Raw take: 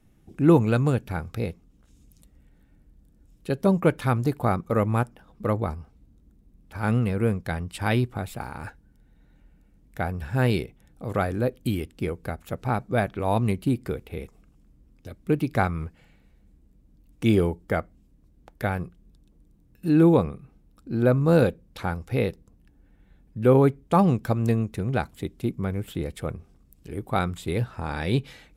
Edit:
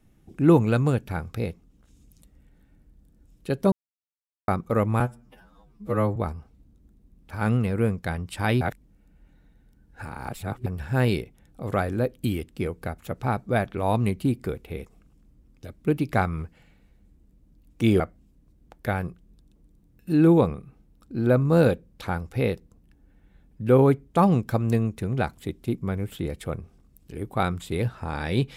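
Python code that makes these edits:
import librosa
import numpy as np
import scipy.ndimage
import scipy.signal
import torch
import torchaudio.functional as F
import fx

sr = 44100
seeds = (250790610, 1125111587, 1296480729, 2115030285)

y = fx.edit(x, sr, fx.silence(start_s=3.72, length_s=0.76),
    fx.stretch_span(start_s=5.0, length_s=0.58, factor=2.0),
    fx.reverse_span(start_s=8.03, length_s=2.05),
    fx.cut(start_s=17.42, length_s=0.34), tone=tone)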